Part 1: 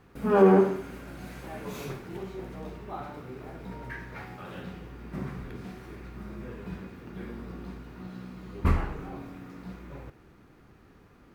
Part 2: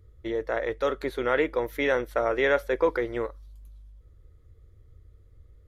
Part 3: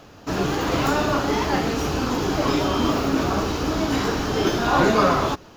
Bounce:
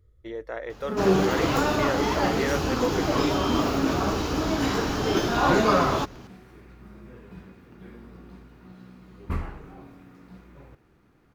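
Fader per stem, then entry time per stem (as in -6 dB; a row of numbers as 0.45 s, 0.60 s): -5.5 dB, -6.0 dB, -2.5 dB; 0.65 s, 0.00 s, 0.70 s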